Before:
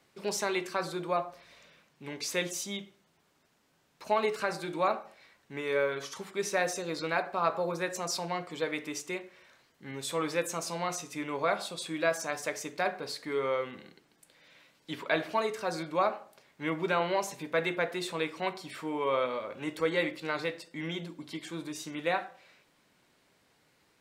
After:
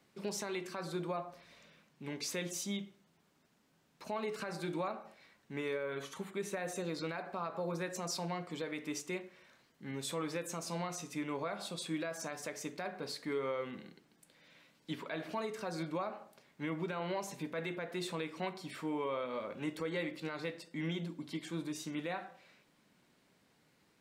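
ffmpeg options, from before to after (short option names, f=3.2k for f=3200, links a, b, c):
-filter_complex "[0:a]asettb=1/sr,asplit=3[a][b][c];[a]atrim=end=5.834[d];[b]atrim=start=5.83:end=6.85,asetpts=PTS-STARTPTS,afade=t=in:d=0.004:c=qsin,afade=t=out:st=1.016:d=0.004:c=qsin,equalizer=f=5.2k:t=o:w=0.4:g=-11.5[e];[c]atrim=start=6.846[f];[d][e]acrossfade=d=0.004:c1=hsin:c2=qsin[g];[g][f]acrossfade=d=0.004:c1=qsin:c2=hsin,equalizer=f=200:t=o:w=1.2:g=7,alimiter=limit=-24dB:level=0:latency=1:release=159,volume=-4dB"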